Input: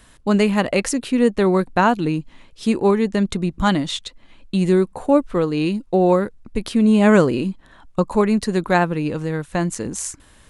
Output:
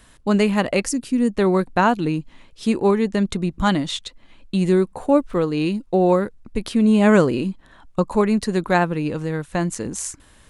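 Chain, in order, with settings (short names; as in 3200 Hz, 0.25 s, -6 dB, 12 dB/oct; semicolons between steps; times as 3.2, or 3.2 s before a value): 0.84–1.33 spectral gain 330–4500 Hz -8 dB; 4.98–5.69 crackle 13/s -> 56/s -39 dBFS; gain -1 dB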